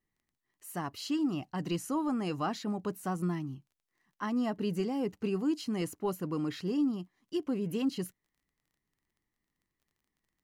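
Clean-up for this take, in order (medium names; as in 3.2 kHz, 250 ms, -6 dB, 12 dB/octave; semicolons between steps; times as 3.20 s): de-click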